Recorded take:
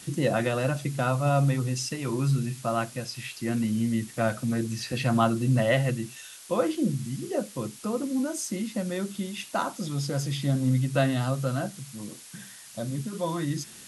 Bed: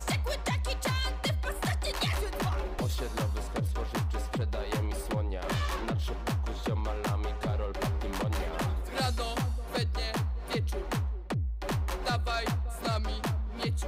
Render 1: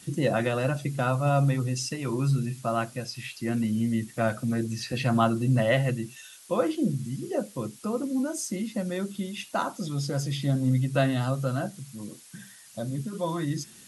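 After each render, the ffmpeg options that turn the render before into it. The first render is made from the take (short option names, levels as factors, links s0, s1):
-af "afftdn=nr=6:nf=-47"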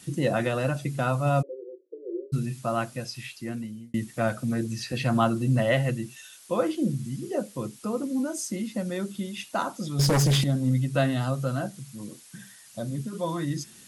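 -filter_complex "[0:a]asplit=3[s0][s1][s2];[s0]afade=t=out:st=1.41:d=0.02[s3];[s1]asuperpass=centerf=430:order=12:qfactor=1.9,afade=t=in:st=1.41:d=0.02,afade=t=out:st=2.32:d=0.02[s4];[s2]afade=t=in:st=2.32:d=0.02[s5];[s3][s4][s5]amix=inputs=3:normalize=0,asettb=1/sr,asplit=3[s6][s7][s8];[s6]atrim=end=9.994[s9];[s7]atrim=start=9.99:end=10.44,asetpts=PTS-STARTPTS,afade=t=in:d=0.004:c=qsin,afade=t=out:st=0.446:d=0.004:c=qsin,aeval=exprs='0.133*sin(PI/2*2.82*val(0)/0.133)':c=same[s10];[s8]atrim=start=10.436[s11];[s9][s10]acrossfade=d=0.004:c1=hsin:c2=qsin[s12];[s12][s11]acrossfade=d=0.004:c1=qsin:c2=hsin,asplit=2[s13][s14];[s13]atrim=end=3.94,asetpts=PTS-STARTPTS,afade=t=out:st=3.15:d=0.79[s15];[s14]atrim=start=3.94,asetpts=PTS-STARTPTS,afade=t=in:d=0.004:c=hsin[s16];[s15][s16]concat=n=2:v=0:a=1"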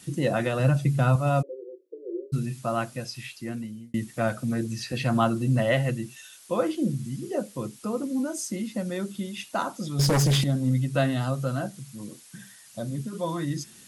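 -filter_complex "[0:a]asettb=1/sr,asplit=3[s0][s1][s2];[s0]atrim=end=0.594[s3];[s1]atrim=start=0.59:end=1.16,asetpts=PTS-STARTPTS,afade=t=in:d=0.004:c=qsin,afade=t=out:st=0.566:d=0.004:c=qsin,equalizer=f=130:t=o:w=1.2:g=8.5[s4];[s2]atrim=start=1.156[s5];[s3][s4]acrossfade=d=0.004:c1=hsin:c2=qsin[s6];[s6][s5]acrossfade=d=0.004:c1=qsin:c2=hsin"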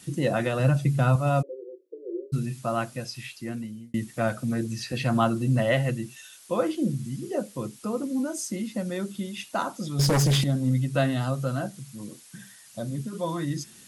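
-af anull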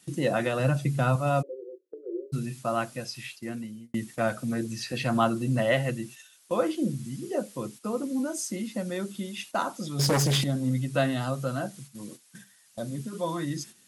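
-af "highpass=f=170:p=1,agate=range=0.355:threshold=0.00631:ratio=16:detection=peak"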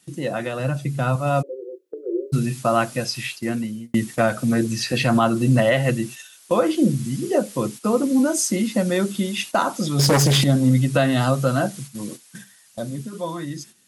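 -af "dynaudnorm=f=290:g=11:m=4.47,alimiter=limit=0.398:level=0:latency=1:release=176"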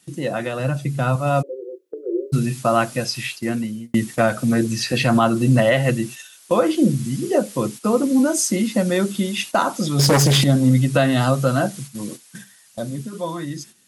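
-af "volume=1.19"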